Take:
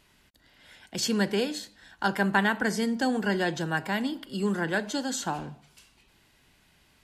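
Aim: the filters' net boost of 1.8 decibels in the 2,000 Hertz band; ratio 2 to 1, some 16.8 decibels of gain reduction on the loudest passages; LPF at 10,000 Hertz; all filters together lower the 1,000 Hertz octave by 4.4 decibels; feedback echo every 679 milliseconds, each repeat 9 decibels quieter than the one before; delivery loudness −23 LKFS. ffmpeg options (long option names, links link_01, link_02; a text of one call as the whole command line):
ffmpeg -i in.wav -af "lowpass=10000,equalizer=frequency=1000:width_type=o:gain=-7.5,equalizer=frequency=2000:width_type=o:gain=5.5,acompressor=threshold=-52dB:ratio=2,aecho=1:1:679|1358|2037|2716:0.355|0.124|0.0435|0.0152,volume=20dB" out.wav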